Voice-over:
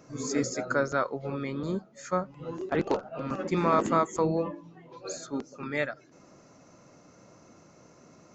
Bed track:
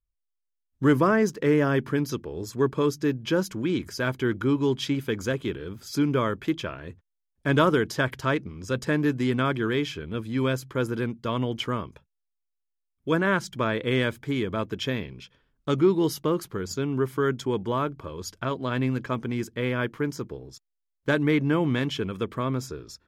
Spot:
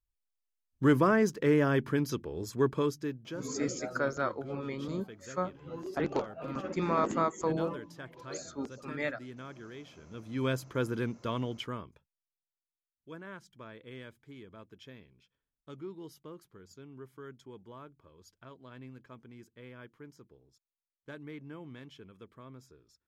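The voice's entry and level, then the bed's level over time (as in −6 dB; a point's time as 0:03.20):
3.25 s, −4.5 dB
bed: 0:02.74 −4 dB
0:03.56 −21 dB
0:09.91 −21 dB
0:10.49 −5 dB
0:11.20 −5 dB
0:12.98 −22.5 dB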